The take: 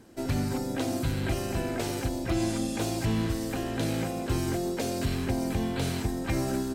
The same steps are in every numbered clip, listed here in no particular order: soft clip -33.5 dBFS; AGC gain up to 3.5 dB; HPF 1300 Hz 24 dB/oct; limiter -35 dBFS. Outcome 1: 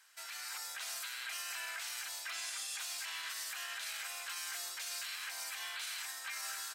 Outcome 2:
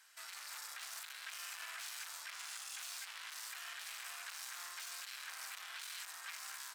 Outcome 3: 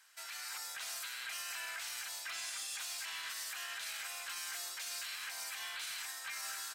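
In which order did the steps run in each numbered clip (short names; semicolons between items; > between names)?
HPF > limiter > soft clip > AGC; AGC > soft clip > HPF > limiter; HPF > limiter > AGC > soft clip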